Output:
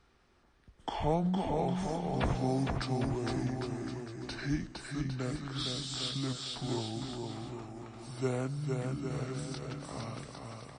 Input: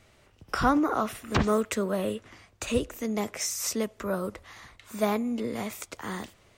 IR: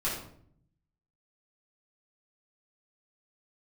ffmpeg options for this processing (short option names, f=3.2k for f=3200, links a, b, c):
-af "asetrate=26901,aresample=44100,aecho=1:1:460|805|1064|1258|1403:0.631|0.398|0.251|0.158|0.1,volume=-7.5dB"